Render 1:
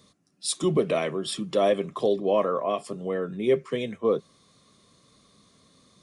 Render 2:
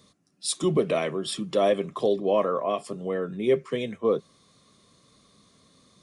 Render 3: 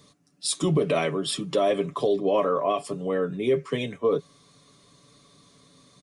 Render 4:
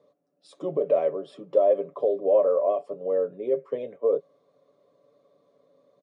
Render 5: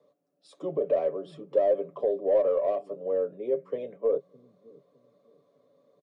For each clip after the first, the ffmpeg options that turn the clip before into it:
-af anull
-af "aecho=1:1:7:0.57,alimiter=limit=0.158:level=0:latency=1:release=30,volume=1.26"
-af "bandpass=f=550:t=q:w=4.9:csg=0,volume=2.11"
-filter_complex "[0:a]acrossover=split=260|330|800[s0][s1][s2][s3];[s0]aecho=1:1:611|1222|1833|2444:0.447|0.134|0.0402|0.0121[s4];[s2]aeval=exprs='0.251*(cos(1*acos(clip(val(0)/0.251,-1,1)))-cos(1*PI/2))+0.00141*(cos(6*acos(clip(val(0)/0.251,-1,1)))-cos(6*PI/2))':c=same[s5];[s3]asoftclip=type=tanh:threshold=0.0178[s6];[s4][s1][s5][s6]amix=inputs=4:normalize=0,volume=0.75"

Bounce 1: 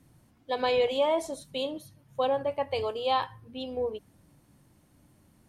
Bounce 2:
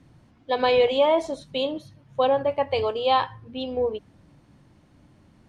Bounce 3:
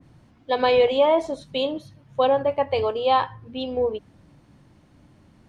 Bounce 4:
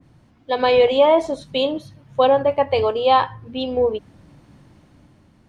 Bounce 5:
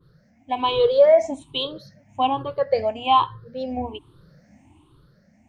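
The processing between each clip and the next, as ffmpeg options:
-af "lowpass=4800,volume=2"
-af "adynamicequalizer=threshold=0.0126:dfrequency=2200:dqfactor=0.7:tfrequency=2200:tqfactor=0.7:attack=5:release=100:ratio=0.375:range=2.5:mode=cutabove:tftype=highshelf,volume=1.19"
-af "dynaudnorm=f=150:g=9:m=1.78"
-af "afftfilt=real='re*pow(10,22/40*sin(2*PI*(0.62*log(max(b,1)*sr/1024/100)/log(2)-(1.2)*(pts-256)/sr)))':imag='im*pow(10,22/40*sin(2*PI*(0.62*log(max(b,1)*sr/1024/100)/log(2)-(1.2)*(pts-256)/sr)))':win_size=1024:overlap=0.75,volume=0.376"

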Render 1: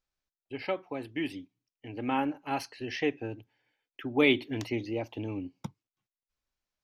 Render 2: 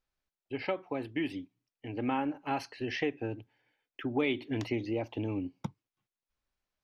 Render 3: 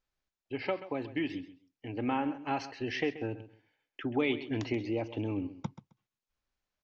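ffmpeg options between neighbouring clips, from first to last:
-af "lowpass=f=3500:p=1,acompressor=threshold=0.0282:ratio=3,volume=1.33"
-af "aecho=1:1:132|264:0.188|0.0358,aresample=16000,aresample=44100"

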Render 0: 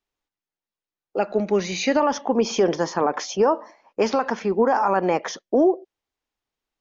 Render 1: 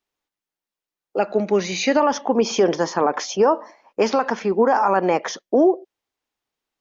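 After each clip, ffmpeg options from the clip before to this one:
-af "lowshelf=f=78:g=-11,volume=1.33"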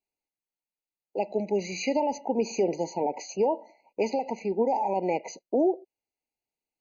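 -af "afftfilt=real='re*eq(mod(floor(b*sr/1024/990),2),0)':imag='im*eq(mod(floor(b*sr/1024/990),2),0)':win_size=1024:overlap=0.75,volume=0.398"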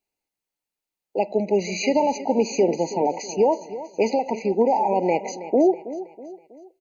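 -af "aecho=1:1:323|646|969|1292:0.188|0.0829|0.0365|0.016,volume=2"

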